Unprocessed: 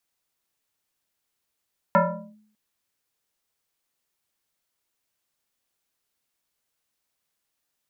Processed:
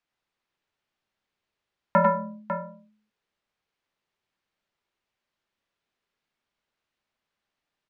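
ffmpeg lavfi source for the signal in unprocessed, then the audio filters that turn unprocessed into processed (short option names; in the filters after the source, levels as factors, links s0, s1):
-f lavfi -i "aevalsrc='0.251*pow(10,-3*t/0.62)*sin(2*PI*213*t+3.2*clip(1-t/0.41,0,1)*sin(2*PI*1.82*213*t))':d=0.6:s=44100"
-filter_complex "[0:a]lowpass=3300,asplit=2[s0][s1];[s1]aecho=0:1:94|99|108|549:0.355|0.531|0.237|0.335[s2];[s0][s2]amix=inputs=2:normalize=0"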